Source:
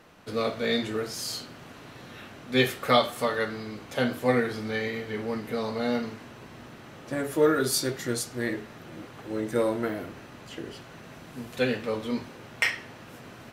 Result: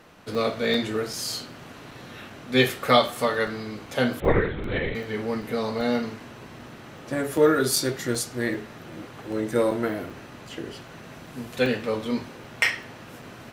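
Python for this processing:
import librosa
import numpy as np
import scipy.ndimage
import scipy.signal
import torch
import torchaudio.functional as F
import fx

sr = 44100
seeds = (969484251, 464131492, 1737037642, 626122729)

y = fx.lpc_vocoder(x, sr, seeds[0], excitation='whisper', order=10, at=(4.2, 4.95))
y = fx.buffer_crackle(y, sr, first_s=0.35, period_s=0.39, block=128, kind='zero')
y = y * librosa.db_to_amplitude(3.0)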